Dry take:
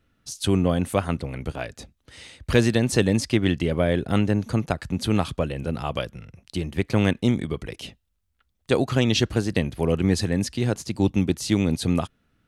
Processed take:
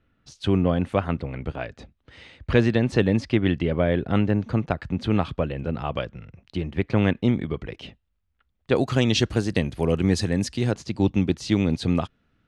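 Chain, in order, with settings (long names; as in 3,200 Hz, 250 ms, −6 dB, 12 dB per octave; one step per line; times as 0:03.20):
low-pass filter 3,000 Hz 12 dB per octave, from 0:08.76 8,800 Hz, from 0:10.71 4,800 Hz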